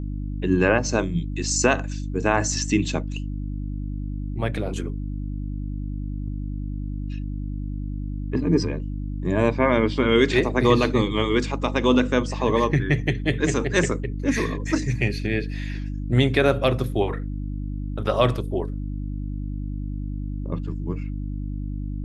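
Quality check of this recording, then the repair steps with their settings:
mains hum 50 Hz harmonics 6 −29 dBFS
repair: hum removal 50 Hz, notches 6

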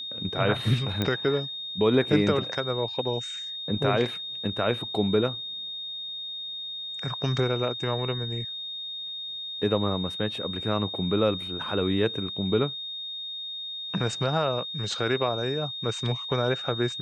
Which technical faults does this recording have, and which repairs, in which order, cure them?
whistle 3,700 Hz −33 dBFS
0:01.02: click −13 dBFS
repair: click removal
notch filter 3,700 Hz, Q 30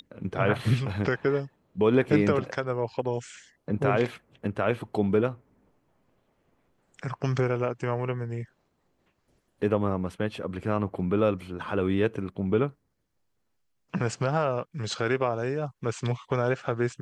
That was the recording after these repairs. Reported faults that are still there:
none of them is left

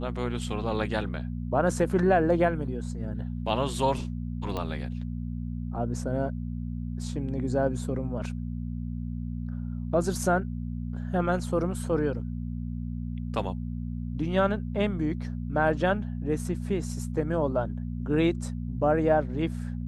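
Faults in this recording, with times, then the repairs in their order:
mains hum 60 Hz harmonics 4 −33 dBFS
0:04.57: click −19 dBFS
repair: click removal
hum removal 60 Hz, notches 4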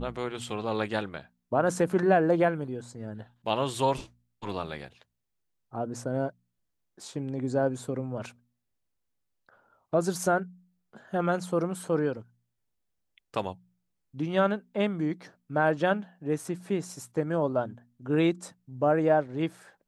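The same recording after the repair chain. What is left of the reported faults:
none of them is left

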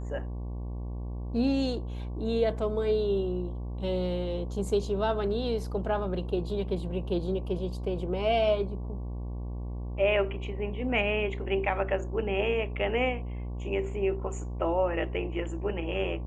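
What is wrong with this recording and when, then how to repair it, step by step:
mains buzz 60 Hz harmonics 19 −35 dBFS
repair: hum removal 60 Hz, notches 19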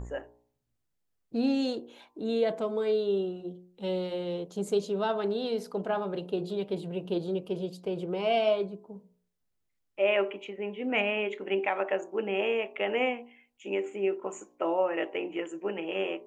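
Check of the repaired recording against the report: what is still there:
none of them is left

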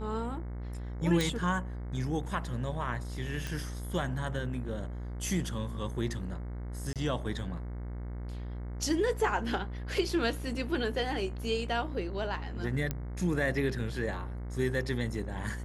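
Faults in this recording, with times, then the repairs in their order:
mains buzz 60 Hz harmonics 37 −38 dBFS
0:01.21: click
0:03.47: click −21 dBFS
0:06.93–0:06.96: drop-out 27 ms
0:12.91: click −17 dBFS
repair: click removal
hum removal 60 Hz, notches 37
repair the gap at 0:06.93, 27 ms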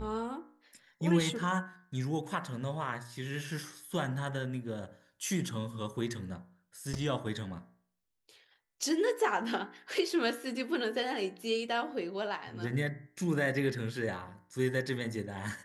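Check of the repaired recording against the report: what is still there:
none of them is left

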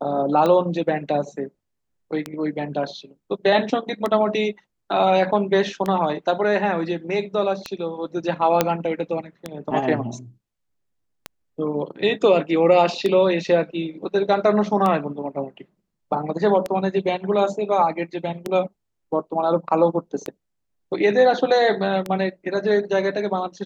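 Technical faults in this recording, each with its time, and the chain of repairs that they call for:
scratch tick 33 1/3 rpm −11 dBFS
0:08.61: click −2 dBFS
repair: click removal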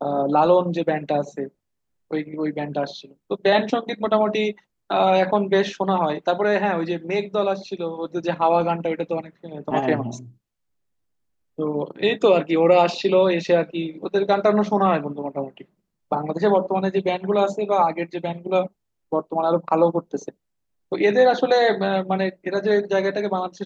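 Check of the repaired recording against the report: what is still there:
none of them is left

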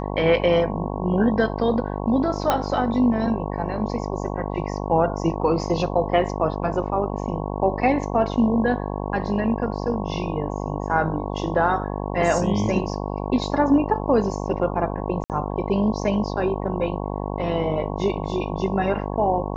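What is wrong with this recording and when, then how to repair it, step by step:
mains buzz 50 Hz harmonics 22 −28 dBFS
0:02.50: click −6 dBFS
0:15.24–0:15.30: drop-out 58 ms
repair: click removal
hum removal 50 Hz, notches 22
repair the gap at 0:15.24, 58 ms

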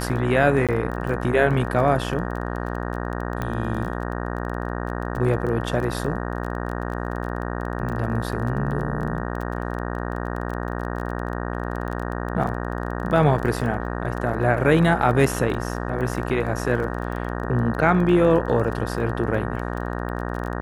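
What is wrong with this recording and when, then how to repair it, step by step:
mains buzz 60 Hz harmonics 31 −28 dBFS
surface crackle 22 per second −29 dBFS
0:00.67–0:00.69: drop-out 17 ms
0:03.42: click −15 dBFS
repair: click removal
hum removal 60 Hz, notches 31
repair the gap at 0:00.67, 17 ms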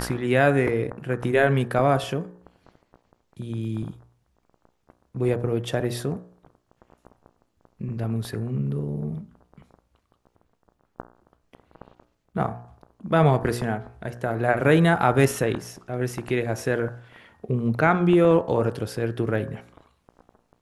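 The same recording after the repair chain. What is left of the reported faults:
none of them is left

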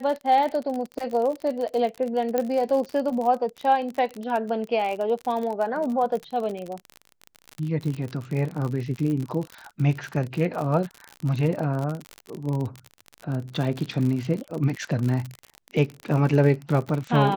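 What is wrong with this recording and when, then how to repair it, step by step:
surface crackle 50 per second −28 dBFS
0:02.38: click −11 dBFS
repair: click removal

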